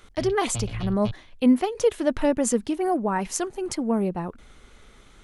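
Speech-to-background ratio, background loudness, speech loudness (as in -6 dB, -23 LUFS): 10.5 dB, -35.5 LUFS, -25.0 LUFS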